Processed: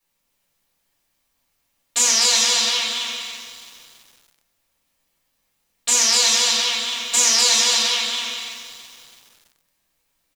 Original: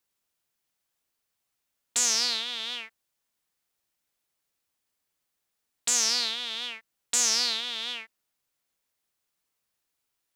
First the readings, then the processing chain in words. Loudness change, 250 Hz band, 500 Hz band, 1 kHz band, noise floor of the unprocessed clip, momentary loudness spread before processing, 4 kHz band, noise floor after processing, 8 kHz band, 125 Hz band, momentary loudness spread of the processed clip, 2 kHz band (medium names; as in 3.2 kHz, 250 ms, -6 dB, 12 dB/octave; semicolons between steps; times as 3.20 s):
+9.5 dB, +9.5 dB, +12.5 dB, +12.5 dB, -81 dBFS, 14 LU, +11.0 dB, -71 dBFS, +10.5 dB, no reading, 15 LU, +11.5 dB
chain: on a send: bouncing-ball echo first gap 250 ms, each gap 0.6×, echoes 5; on the sum: simulated room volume 250 m³, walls furnished, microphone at 5.9 m; bit-crushed delay 331 ms, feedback 55%, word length 6-bit, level -12 dB; trim -1 dB